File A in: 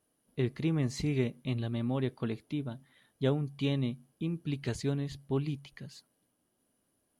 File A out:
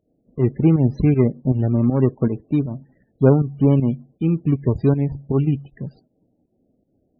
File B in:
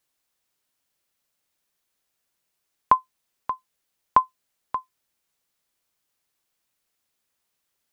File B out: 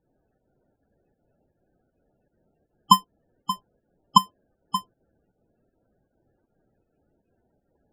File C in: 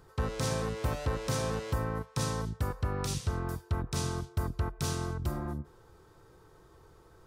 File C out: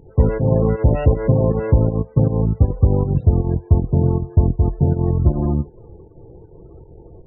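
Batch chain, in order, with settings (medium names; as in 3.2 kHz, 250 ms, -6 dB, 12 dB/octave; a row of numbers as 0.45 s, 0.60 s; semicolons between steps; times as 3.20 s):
median filter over 41 samples; volume shaper 158 bpm, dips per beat 1, -10 dB, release 149 ms; loudest bins only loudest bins 32; peak normalisation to -3 dBFS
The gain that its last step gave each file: +16.0 dB, +23.0 dB, +18.5 dB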